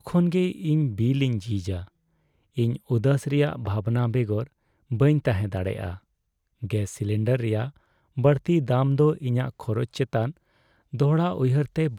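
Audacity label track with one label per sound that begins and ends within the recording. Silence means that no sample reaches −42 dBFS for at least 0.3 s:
2.570000	4.470000	sound
4.910000	5.980000	sound
6.620000	7.700000	sound
8.170000	10.370000	sound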